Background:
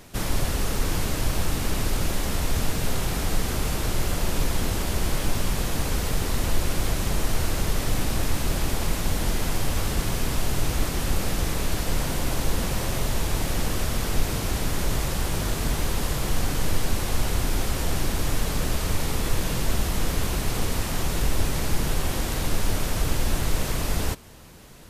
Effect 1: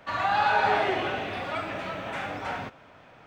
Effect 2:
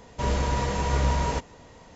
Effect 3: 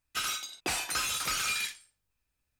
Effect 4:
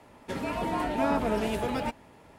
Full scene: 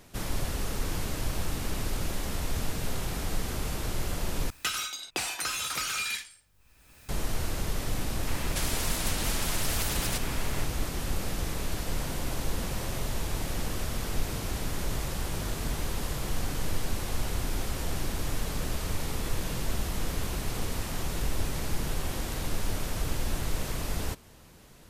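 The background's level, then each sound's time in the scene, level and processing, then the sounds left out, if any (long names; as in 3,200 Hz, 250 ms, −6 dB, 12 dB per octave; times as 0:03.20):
background −6.5 dB
0:04.50: overwrite with 3 −0.5 dB + multiband upward and downward compressor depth 100%
0:08.27: mix in 4 −2 dB + every bin compressed towards the loudest bin 10 to 1
not used: 1, 2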